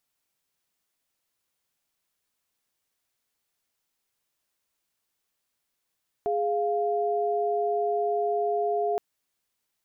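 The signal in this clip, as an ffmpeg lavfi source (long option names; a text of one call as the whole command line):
ffmpeg -f lavfi -i "aevalsrc='0.0501*(sin(2*PI*415.3*t)+sin(2*PI*698.46*t))':duration=2.72:sample_rate=44100" out.wav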